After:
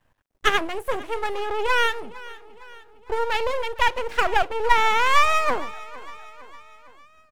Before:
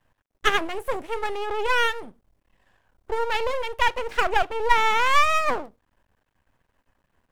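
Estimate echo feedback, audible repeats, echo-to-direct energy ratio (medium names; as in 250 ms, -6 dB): 54%, 3, -17.5 dB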